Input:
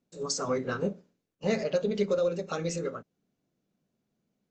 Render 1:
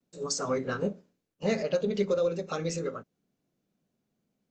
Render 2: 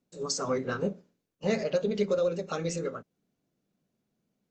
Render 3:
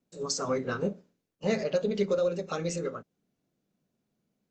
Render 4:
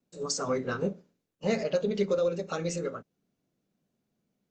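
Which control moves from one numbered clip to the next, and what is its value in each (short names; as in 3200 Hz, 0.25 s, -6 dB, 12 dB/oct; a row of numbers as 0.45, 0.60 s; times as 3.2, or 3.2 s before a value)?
vibrato, rate: 0.31, 8.5, 2.3, 0.83 Hz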